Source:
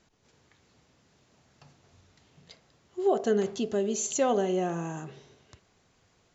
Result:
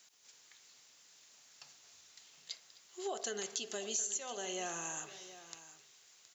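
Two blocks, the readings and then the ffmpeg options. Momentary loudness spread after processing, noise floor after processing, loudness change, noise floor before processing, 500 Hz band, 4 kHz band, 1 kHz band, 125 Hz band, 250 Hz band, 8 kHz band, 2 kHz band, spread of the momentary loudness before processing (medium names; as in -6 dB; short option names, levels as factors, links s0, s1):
23 LU, -64 dBFS, -11.5 dB, -67 dBFS, -16.0 dB, +0.5 dB, -12.0 dB, -21.5 dB, -19.5 dB, no reading, -4.0 dB, 14 LU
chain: -filter_complex "[0:a]aderivative,acompressor=threshold=0.00447:ratio=8,asplit=2[s0][s1];[s1]aecho=0:1:259|719:0.106|0.178[s2];[s0][s2]amix=inputs=2:normalize=0,volume=3.98"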